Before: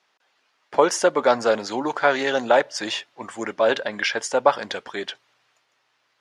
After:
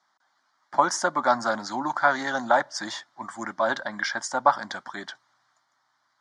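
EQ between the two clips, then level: BPF 140–7000 Hz; fixed phaser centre 1100 Hz, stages 4; +1.5 dB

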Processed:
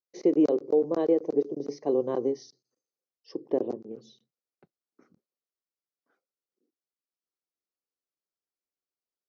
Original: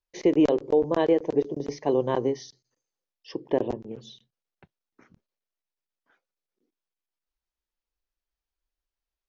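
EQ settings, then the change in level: speaker cabinet 240–5800 Hz, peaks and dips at 640 Hz -4 dB, 930 Hz -10 dB, 1700 Hz -8 dB, 3400 Hz -7 dB; bell 2600 Hz -13 dB 1.1 oct; 0.0 dB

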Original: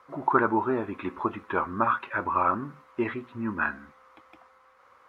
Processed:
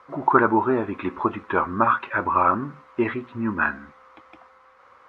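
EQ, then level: air absorption 58 m; +5.5 dB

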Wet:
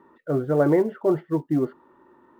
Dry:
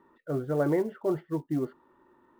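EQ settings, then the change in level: low shelf 69 Hz -9 dB; high shelf 2800 Hz -7.5 dB; +7.5 dB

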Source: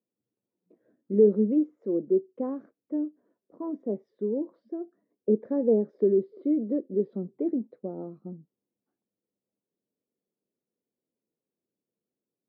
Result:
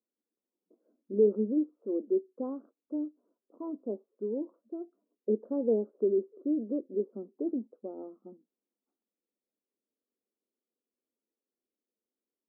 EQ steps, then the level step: brick-wall FIR high-pass 200 Hz; steep low-pass 1400 Hz 72 dB/oct; -4.5 dB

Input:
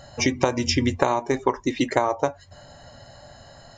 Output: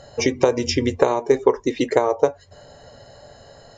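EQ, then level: air absorption 57 m; bell 450 Hz +14.5 dB 0.48 oct; high shelf 6500 Hz +10.5 dB; -1.5 dB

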